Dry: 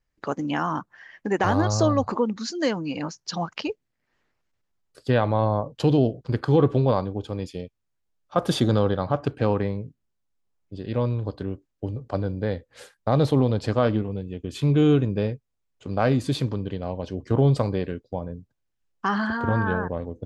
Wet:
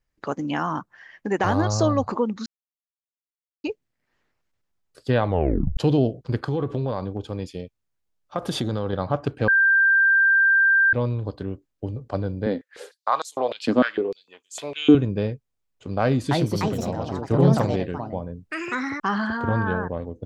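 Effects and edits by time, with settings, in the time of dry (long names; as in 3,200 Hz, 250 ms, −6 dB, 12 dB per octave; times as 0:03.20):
0:02.46–0:03.64: silence
0:05.27: tape stop 0.50 s
0:06.46–0:08.93: downward compressor 4 to 1, threshold −21 dBFS
0:09.48–0:10.93: beep over 1,580 Hz −14 dBFS
0:12.46–0:14.95: high-pass on a step sequencer 6.6 Hz 250–7,000 Hz
0:16.01–0:19.40: delay with pitch and tempo change per echo 299 ms, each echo +4 semitones, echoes 2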